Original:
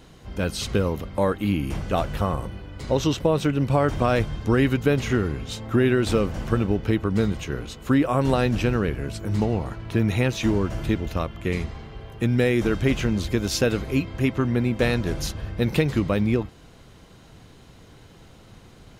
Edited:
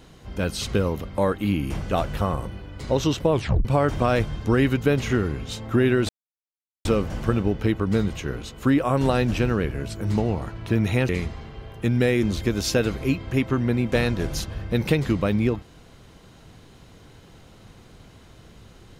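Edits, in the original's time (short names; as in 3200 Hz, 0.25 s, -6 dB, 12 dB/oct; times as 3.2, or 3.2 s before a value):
3.32 tape stop 0.33 s
6.09 insert silence 0.76 s
10.33–11.47 cut
12.61–13.1 cut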